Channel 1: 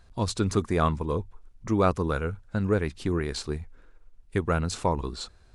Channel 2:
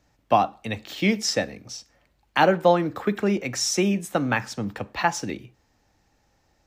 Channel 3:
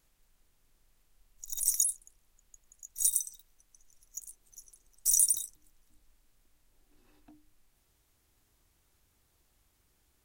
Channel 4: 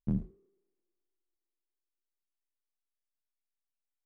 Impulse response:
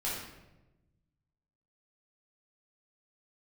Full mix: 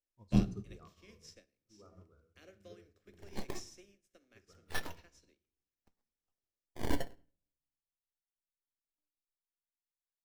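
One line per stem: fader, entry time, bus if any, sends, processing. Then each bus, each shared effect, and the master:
-10.5 dB, 0.00 s, send -11.5 dB, spectral contrast enhancement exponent 1.7; auto duck -9 dB, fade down 1.15 s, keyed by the second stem
-18.0 dB, 0.00 s, send -17 dB, spectral levelling over time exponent 0.6; treble shelf 3.3 kHz +7 dB; static phaser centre 360 Hz, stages 4
-3.5 dB, 1.70 s, send -10.5 dB, decimation with a swept rate 21×, swing 160% 0.22 Hz; half-wave rectifier
+1.5 dB, 0.25 s, send -5.5 dB, none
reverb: on, RT60 1.0 s, pre-delay 9 ms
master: upward expansion 2.5:1, over -48 dBFS

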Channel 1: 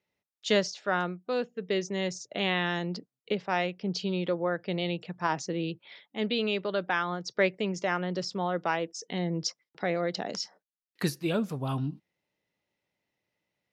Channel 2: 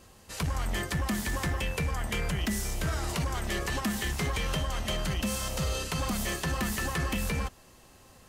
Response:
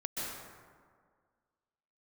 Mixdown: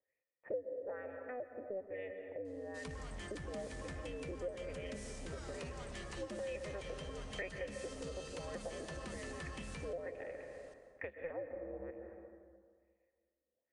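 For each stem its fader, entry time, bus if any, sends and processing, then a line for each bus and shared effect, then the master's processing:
+1.0 dB, 0.00 s, send -8 dB, cycle switcher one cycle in 2, inverted; LFO low-pass sine 1.1 Hz 310–3000 Hz; cascade formant filter e
-11.5 dB, 2.45 s, send -9 dB, none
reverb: on, RT60 1.8 s, pre-delay 118 ms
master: elliptic low-pass 9.6 kHz, stop band 40 dB; compression 2.5:1, threshold -45 dBFS, peak gain reduction 18 dB

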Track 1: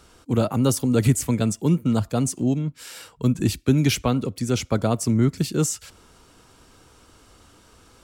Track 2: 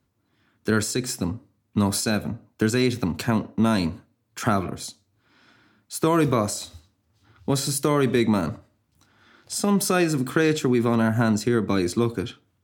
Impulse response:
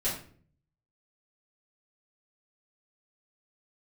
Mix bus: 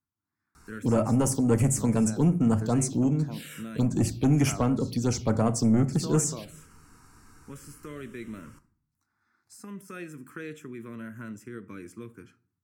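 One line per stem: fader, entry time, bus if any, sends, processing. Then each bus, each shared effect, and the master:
-1.5 dB, 0.55 s, send -16.5 dB, saturation -15 dBFS, distortion -14 dB
-15.5 dB, 0.00 s, send -23 dB, de-esser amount 50%; bass shelf 240 Hz -6 dB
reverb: on, RT60 0.50 s, pre-delay 4 ms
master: touch-sensitive phaser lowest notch 530 Hz, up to 3.9 kHz, full sweep at -20 dBFS

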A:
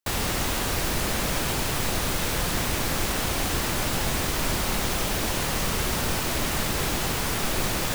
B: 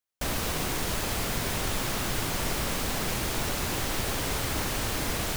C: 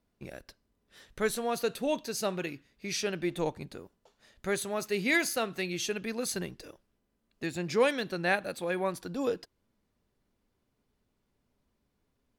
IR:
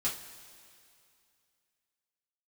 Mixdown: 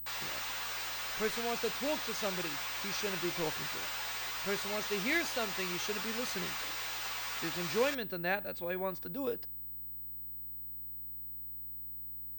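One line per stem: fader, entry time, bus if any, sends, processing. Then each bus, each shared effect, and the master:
-5.5 dB, 0.00 s, no send, high-pass 1 kHz 12 dB/octave; three-phase chorus
mute
-5.5 dB, 0.00 s, no send, none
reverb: none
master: hum 60 Hz, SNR 23 dB; class-D stage that switches slowly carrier 16 kHz

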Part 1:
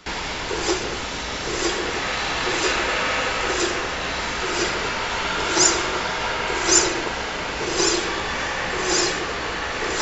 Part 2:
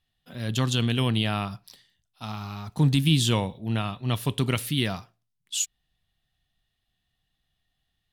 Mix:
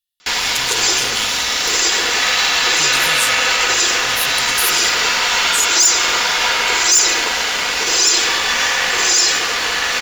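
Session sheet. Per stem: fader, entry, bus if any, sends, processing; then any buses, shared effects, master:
-2.5 dB, 0.20 s, no send, bass shelf 400 Hz -11 dB; comb 4.1 ms, depth 33%
-3.0 dB, 0.00 s, no send, pre-emphasis filter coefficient 0.9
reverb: none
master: treble shelf 2.2 kHz +11 dB; waveshaping leveller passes 2; peak limiter -5.5 dBFS, peak gain reduction 9.5 dB

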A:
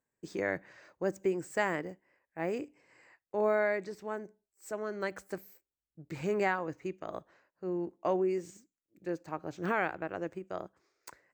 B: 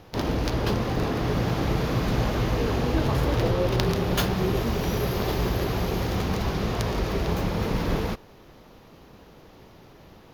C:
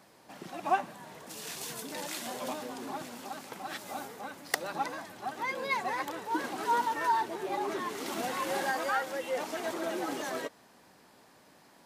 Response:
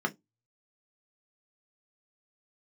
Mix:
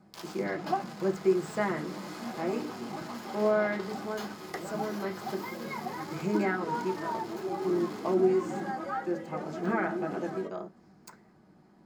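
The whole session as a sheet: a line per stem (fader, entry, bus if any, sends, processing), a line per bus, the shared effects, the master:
+1.5 dB, 0.00 s, bus A, send -9 dB, none
-14.0 dB, 0.00 s, bus A, send -11.5 dB, high-pass 710 Hz 12 dB/octave; treble shelf 3.5 kHz +8 dB; fuzz box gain 28 dB, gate -32 dBFS; auto duck -8 dB, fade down 0.60 s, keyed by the first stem
-7.0 dB, 0.00 s, no bus, send -4.5 dB, tilt EQ -2.5 dB/octave
bus A: 0.0 dB, brick-wall FIR high-pass 1.1 kHz; compression, threshold -38 dBFS, peak gain reduction 10 dB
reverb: on, RT60 0.15 s, pre-delay 3 ms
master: none

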